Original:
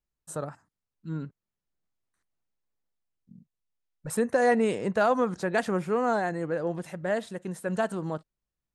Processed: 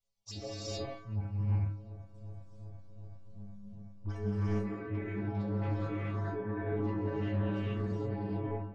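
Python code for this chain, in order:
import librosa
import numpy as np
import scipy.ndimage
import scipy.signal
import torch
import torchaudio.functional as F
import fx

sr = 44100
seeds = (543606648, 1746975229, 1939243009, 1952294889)

p1 = fx.pitch_ramps(x, sr, semitones=-10.5, every_ms=416)
p2 = fx.dynamic_eq(p1, sr, hz=160.0, q=1.6, threshold_db=-43.0, ratio=4.0, max_db=-7)
p3 = fx.over_compress(p2, sr, threshold_db=-38.0, ratio=-1.0)
p4 = fx.fold_sine(p3, sr, drive_db=17, ceiling_db=-11.5)
p5 = p3 + (p4 * 10.0 ** (-10.5 / 20.0))
p6 = fx.stiff_resonator(p5, sr, f0_hz=100.0, decay_s=0.85, stiffness=0.008)
p7 = fx.env_phaser(p6, sr, low_hz=270.0, high_hz=4400.0, full_db=-31.0)
p8 = fx.filter_sweep_lowpass(p7, sr, from_hz=5800.0, to_hz=1600.0, start_s=3.5, end_s=4.11, q=1.2)
p9 = p8 + fx.echo_wet_lowpass(p8, sr, ms=373, feedback_pct=83, hz=1300.0, wet_db=-16.5, dry=0)
p10 = fx.rev_gated(p9, sr, seeds[0], gate_ms=470, shape='rising', drr_db=-6.5)
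y = fx.doppler_dist(p10, sr, depth_ms=0.14)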